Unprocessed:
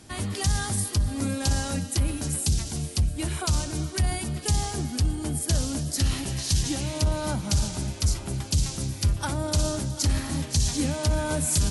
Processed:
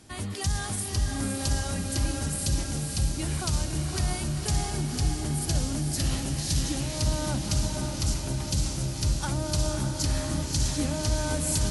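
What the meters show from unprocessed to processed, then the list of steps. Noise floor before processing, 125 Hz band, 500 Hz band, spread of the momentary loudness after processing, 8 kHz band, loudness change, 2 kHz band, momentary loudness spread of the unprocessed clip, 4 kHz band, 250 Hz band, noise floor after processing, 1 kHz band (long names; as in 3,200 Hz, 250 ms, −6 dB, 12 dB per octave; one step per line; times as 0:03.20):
−38 dBFS, −2.0 dB, −1.5 dB, 2 LU, −1.5 dB, −1.5 dB, −1.5 dB, 3 LU, −1.5 dB, −1.5 dB, −34 dBFS, −1.5 dB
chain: feedback delay with all-pass diffusion 554 ms, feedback 62%, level −4 dB
level −3.5 dB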